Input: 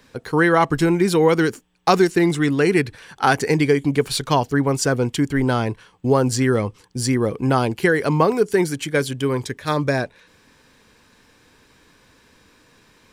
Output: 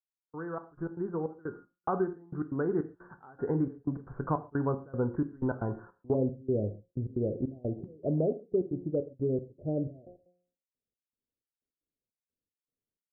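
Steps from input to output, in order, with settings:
fade in at the beginning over 4.06 s
noise gate −44 dBFS, range −39 dB
Butterworth low-pass 1,500 Hz 72 dB per octave, from 0:06.13 670 Hz
hum removal 178.1 Hz, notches 35
downward compressor 2 to 1, threshold −30 dBFS, peak gain reduction 10 dB
gate pattern "x..xxx..x.xxx..x" 155 BPM −24 dB
reverb whose tail is shaped and stops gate 160 ms falling, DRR 9.5 dB
level −2 dB

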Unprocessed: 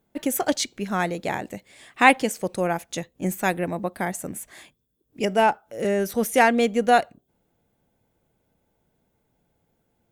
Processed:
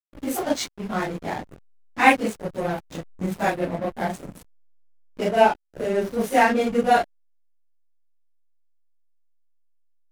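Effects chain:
random phases in long frames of 100 ms
0:03.36–0:05.48: parametric band 650 Hz +4.5 dB 0.72 octaves
slack as between gear wheels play −24.5 dBFS

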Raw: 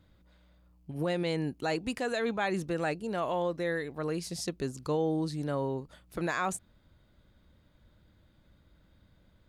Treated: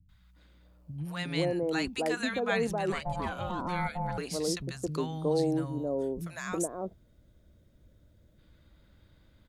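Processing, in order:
0:05.38–0:08.29: gain on a spectral selection 730–5,100 Hz −8 dB
three-band delay without the direct sound lows, highs, mids 90/360 ms, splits 190/890 Hz
0:02.92–0:04.18: ring modulation 360 Hz
level +3 dB

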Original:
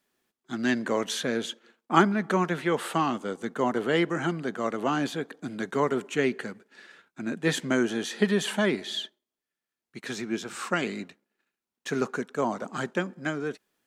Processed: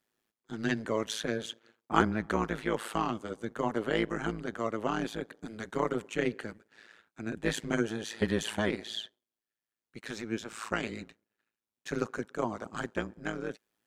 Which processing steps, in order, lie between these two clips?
amplitude modulation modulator 110 Hz, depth 85%
level −1.5 dB

